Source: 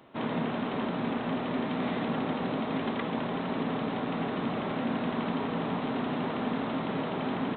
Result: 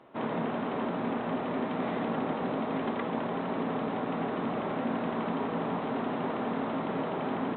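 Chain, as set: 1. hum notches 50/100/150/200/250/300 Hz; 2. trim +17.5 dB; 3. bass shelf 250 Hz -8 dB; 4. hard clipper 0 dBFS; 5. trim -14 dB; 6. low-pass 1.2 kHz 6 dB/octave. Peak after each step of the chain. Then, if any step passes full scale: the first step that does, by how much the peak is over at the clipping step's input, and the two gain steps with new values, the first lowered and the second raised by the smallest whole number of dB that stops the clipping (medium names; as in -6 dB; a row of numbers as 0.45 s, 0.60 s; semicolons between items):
-18.5 dBFS, -1.0 dBFS, -3.0 dBFS, -3.0 dBFS, -17.0 dBFS, -19.0 dBFS; nothing clips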